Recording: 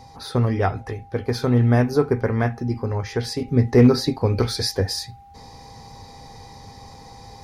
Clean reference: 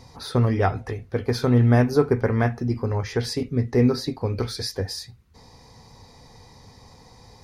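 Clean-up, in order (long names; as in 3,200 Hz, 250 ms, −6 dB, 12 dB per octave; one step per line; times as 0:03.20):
clipped peaks rebuilt −5 dBFS
notch filter 800 Hz, Q 30
level correction −5.5 dB, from 0:03.48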